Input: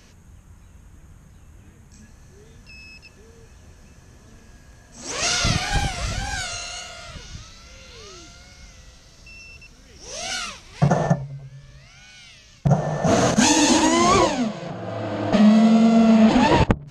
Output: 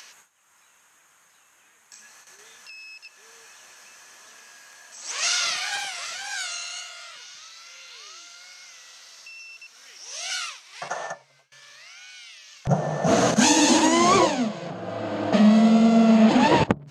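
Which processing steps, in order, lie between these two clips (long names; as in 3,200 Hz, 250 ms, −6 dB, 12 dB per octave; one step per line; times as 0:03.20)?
high-pass filter 1,100 Hz 12 dB per octave, from 0:12.67 150 Hz
noise gate with hold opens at −48 dBFS
upward compression, threshold −37 dBFS
level −1 dB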